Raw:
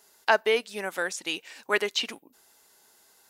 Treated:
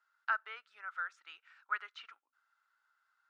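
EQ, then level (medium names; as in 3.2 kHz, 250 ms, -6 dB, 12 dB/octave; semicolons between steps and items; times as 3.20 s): ladder band-pass 1.4 kHz, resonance 85%; -5.5 dB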